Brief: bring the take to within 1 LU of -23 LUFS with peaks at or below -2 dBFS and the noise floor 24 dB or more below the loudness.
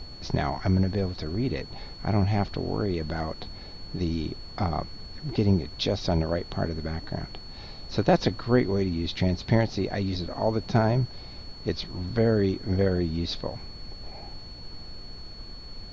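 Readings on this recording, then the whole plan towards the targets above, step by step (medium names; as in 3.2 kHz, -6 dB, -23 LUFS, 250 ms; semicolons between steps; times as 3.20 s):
steady tone 4.4 kHz; tone level -44 dBFS; noise floor -43 dBFS; noise floor target -52 dBFS; loudness -27.5 LUFS; peak level -8.0 dBFS; loudness target -23.0 LUFS
-> band-stop 4.4 kHz, Q 30; noise print and reduce 9 dB; trim +4.5 dB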